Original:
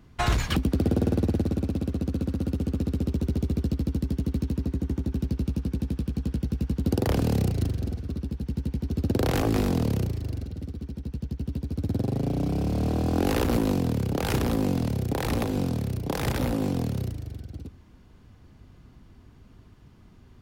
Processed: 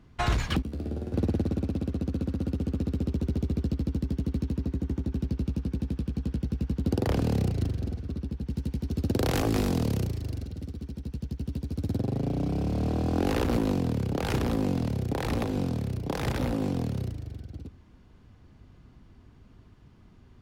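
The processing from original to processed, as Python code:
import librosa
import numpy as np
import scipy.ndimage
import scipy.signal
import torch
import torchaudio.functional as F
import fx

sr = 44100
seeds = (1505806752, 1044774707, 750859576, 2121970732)

y = fx.comb_fb(x, sr, f0_hz=73.0, decay_s=0.64, harmonics='all', damping=0.0, mix_pct=80, at=(0.62, 1.14))
y = fx.high_shelf(y, sr, hz=4700.0, db=9.0, at=(8.5, 11.98))
y = fx.high_shelf(y, sr, hz=9200.0, db=-9.5)
y = F.gain(torch.from_numpy(y), -2.0).numpy()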